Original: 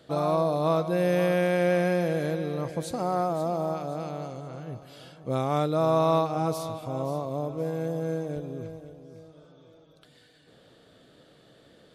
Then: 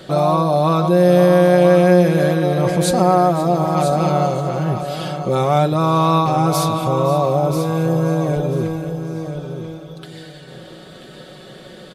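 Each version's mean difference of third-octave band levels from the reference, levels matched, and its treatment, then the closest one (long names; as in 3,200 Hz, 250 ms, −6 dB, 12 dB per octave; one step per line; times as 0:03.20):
4.5 dB: in parallel at −1 dB: compressor whose output falls as the input rises −34 dBFS, ratio −1
on the sum: comb filter 5.4 ms, depth 64%
repeating echo 987 ms, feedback 18%, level −9.5 dB
level +7 dB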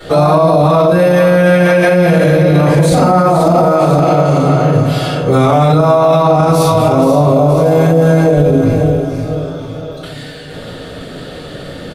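7.0 dB: on a send: repeating echo 470 ms, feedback 39%, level −11 dB
on the sum: rectangular room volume 77 cubic metres, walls mixed, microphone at 4.1 metres
boost into a limiter +14 dB
level −1 dB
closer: first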